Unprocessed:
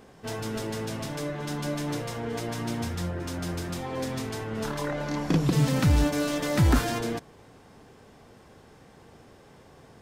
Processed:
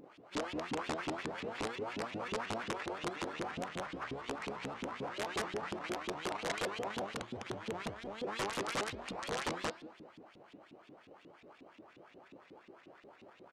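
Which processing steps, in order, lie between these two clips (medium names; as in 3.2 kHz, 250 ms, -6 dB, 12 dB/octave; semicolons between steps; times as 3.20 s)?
sample-rate reducer 4.7 kHz, jitter 0%; speed mistake 45 rpm record played at 33 rpm; feedback delay 206 ms, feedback 49%, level -20 dB; compression 20:1, threshold -28 dBFS, peak gain reduction 13 dB; LFO band-pass saw up 5.6 Hz 270–3500 Hz; integer overflow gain 34 dB; low-pass 9.4 kHz 24 dB/octave; bass shelf 94 Hz -7.5 dB; de-hum 315.1 Hz, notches 17; vibrato with a chosen wave saw up 5.7 Hz, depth 250 cents; trim +5 dB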